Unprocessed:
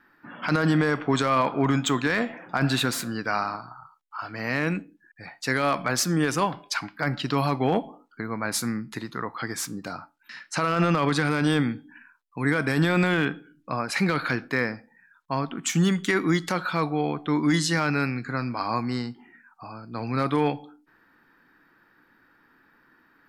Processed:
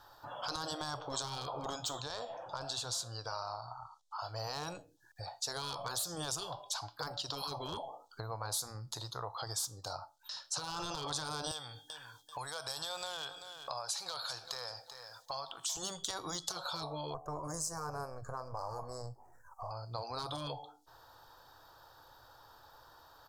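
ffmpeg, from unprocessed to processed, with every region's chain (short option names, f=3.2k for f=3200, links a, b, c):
-filter_complex "[0:a]asettb=1/sr,asplit=3[a][b][c];[a]atrim=end=2.014[d];[b]atrim=start=2.01:end=4.2,asetpts=PTS-STARTPTS,afade=t=in:d=0.004:c=qsin,afade=t=out:st=2.186:d=0.004:c=qsin,lowpass=8.2k,acompressor=threshold=-34dB:ratio=1.5:attack=3.2:release=140:knee=1:detection=peak[e];[c]atrim=start=4.196[f];[d][e]acrossfade=d=0.004:c1=hsin:c2=qsin[g];[g][f]acrossfade=d=0.004:c1=qsin:c2=hsin,asettb=1/sr,asplit=3[h][i][j];[h]atrim=end=11.514[k];[i]atrim=start=11.51:end=15.77,asetpts=PTS-STARTPTS,afade=t=in:d=0.004:c=qsin,afade=t=out:st=4.256:d=0.004:c=qsin,tiltshelf=f=680:g=-9.5,acompressor=threshold=-36dB:ratio=2:attack=3.2:release=140:knee=1:detection=peak,aecho=1:1:388|776:0.158|0.0269,atrim=end_sample=187866[l];[j]atrim=start=15.766[m];[k][l]acrossfade=d=0.004:c1=hsin:c2=qsin[n];[n][m]acrossfade=d=0.004:c1=qsin:c2=hsin,asettb=1/sr,asplit=3[o][p][q];[o]atrim=end=17.144[r];[p]atrim=start=17.14:end=19.71,asetpts=PTS-STARTPTS,afade=t=in:d=0.004:c=qsin,afade=t=out:st=2.566:d=0.004:c=qsin,aeval=exprs='if(lt(val(0),0),0.708*val(0),val(0))':c=same,asuperstop=centerf=3400:order=4:qfactor=0.55,aecho=1:1:1.8:0.37,atrim=end_sample=113337[s];[q]atrim=start=19.706[t];[r][s]acrossfade=d=0.004:c1=hsin:c2=qsin[u];[u][t]acrossfade=d=0.004:c1=qsin:c2=hsin,firequalizer=gain_entry='entry(110,0);entry(200,-29);entry(560,1);entry(860,1);entry(2100,-27);entry(3400,2);entry(6200,7);entry(10000,1)':delay=0.05:min_phase=1,afftfilt=real='re*lt(hypot(re,im),0.112)':imag='im*lt(hypot(re,im),0.112)':win_size=1024:overlap=0.75,acompressor=threshold=-58dB:ratio=2,volume=10dB"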